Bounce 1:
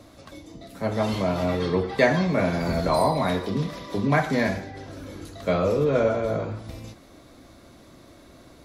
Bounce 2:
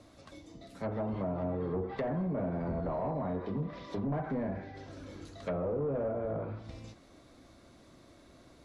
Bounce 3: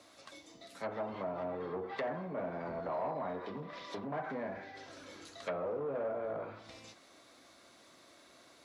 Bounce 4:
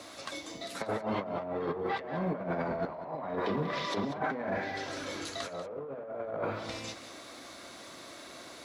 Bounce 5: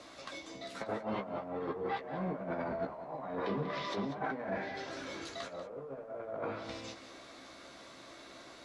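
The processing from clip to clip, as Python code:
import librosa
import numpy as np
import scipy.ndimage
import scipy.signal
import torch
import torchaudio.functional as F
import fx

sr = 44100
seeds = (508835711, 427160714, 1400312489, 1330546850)

y1 = np.clip(x, -10.0 ** (-20.5 / 20.0), 10.0 ** (-20.5 / 20.0))
y1 = scipy.signal.sosfilt(scipy.signal.butter(4, 11000.0, 'lowpass', fs=sr, output='sos'), y1)
y1 = fx.env_lowpass_down(y1, sr, base_hz=790.0, full_db=-21.5)
y1 = y1 * librosa.db_to_amplitude(-8.0)
y2 = fx.highpass(y1, sr, hz=1100.0, slope=6)
y2 = y2 * librosa.db_to_amplitude(4.5)
y3 = fx.over_compress(y2, sr, threshold_db=-42.0, ratio=-0.5)
y3 = y3 + 10.0 ** (-13.0 / 20.0) * np.pad(y3, (int(191 * sr / 1000.0), 0))[:len(y3)]
y3 = y3 * librosa.db_to_amplitude(8.5)
y4 = fx.dmg_noise_colour(y3, sr, seeds[0], colour='pink', level_db=-73.0)
y4 = fx.air_absorb(y4, sr, metres=56.0)
y4 = fx.doubler(y4, sr, ms=15.0, db=-7.0)
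y4 = y4 * librosa.db_to_amplitude(-4.5)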